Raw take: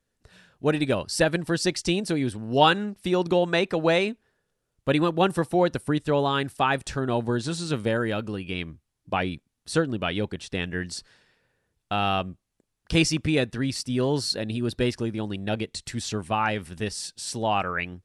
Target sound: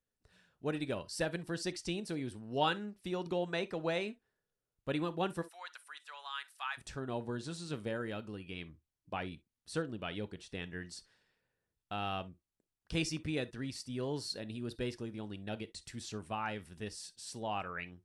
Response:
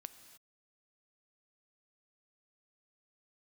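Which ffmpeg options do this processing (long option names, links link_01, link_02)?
-filter_complex "[0:a]asplit=3[link_01][link_02][link_03];[link_01]afade=type=out:start_time=5.41:duration=0.02[link_04];[link_02]highpass=frequency=1100:width=0.5412,highpass=frequency=1100:width=1.3066,afade=type=in:start_time=5.41:duration=0.02,afade=type=out:start_time=6.77:duration=0.02[link_05];[link_03]afade=type=in:start_time=6.77:duration=0.02[link_06];[link_04][link_05][link_06]amix=inputs=3:normalize=0[link_07];[1:a]atrim=start_sample=2205,atrim=end_sample=3969,asetrate=57330,aresample=44100[link_08];[link_07][link_08]afir=irnorm=-1:irlink=0,volume=-5dB"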